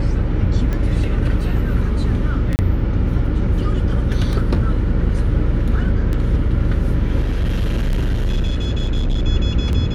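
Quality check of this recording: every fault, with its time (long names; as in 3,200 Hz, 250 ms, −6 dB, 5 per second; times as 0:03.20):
mains hum 60 Hz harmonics 8 −21 dBFS
scratch tick 33 1/3 rpm −12 dBFS
0:02.56–0:02.59: drop-out 29 ms
0:07.22–0:09.27: clipping −14.5 dBFS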